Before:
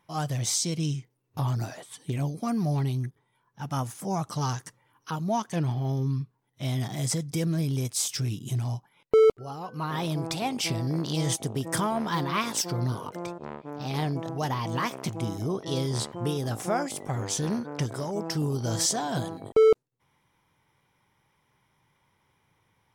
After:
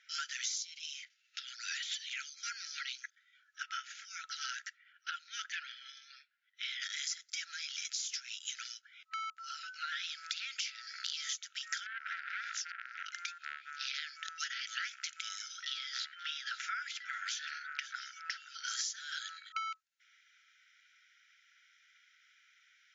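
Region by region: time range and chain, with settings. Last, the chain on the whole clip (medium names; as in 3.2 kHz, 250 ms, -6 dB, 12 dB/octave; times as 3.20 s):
0.62–2.11 s: compression 10:1, threshold -40 dBFS + frequency weighting D
3.63–6.82 s: low-pass 3.4 kHz + peaking EQ 510 Hz -13 dB 1.3 oct
7.44–11.01 s: block-companded coder 7-bit + high-pass 320 Hz 6 dB/octave + compression 2:1, threshold -33 dBFS
11.86–13.06 s: FFT filter 390 Hz 0 dB, 670 Hz +10 dB, 2.3 kHz -14 dB + compression 16:1, threshold -29 dBFS + transformer saturation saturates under 1.3 kHz
15.66–18.68 s: low-pass 3.5 kHz + delay 530 ms -18.5 dB
whole clip: FFT band-pass 1.3–7.3 kHz; compression 12:1, threshold -44 dBFS; trim +8.5 dB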